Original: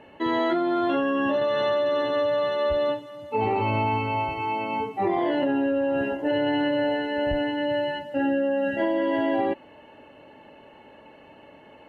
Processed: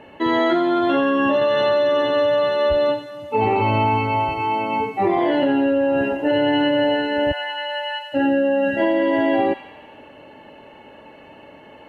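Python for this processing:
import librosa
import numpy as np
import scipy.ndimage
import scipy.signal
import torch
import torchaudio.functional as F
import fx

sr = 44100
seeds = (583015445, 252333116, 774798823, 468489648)

p1 = fx.highpass(x, sr, hz=770.0, slope=24, at=(7.31, 8.12), fade=0.02)
p2 = p1 + fx.echo_wet_highpass(p1, sr, ms=86, feedback_pct=63, hz=1500.0, wet_db=-9, dry=0)
y = p2 * librosa.db_to_amplitude(5.5)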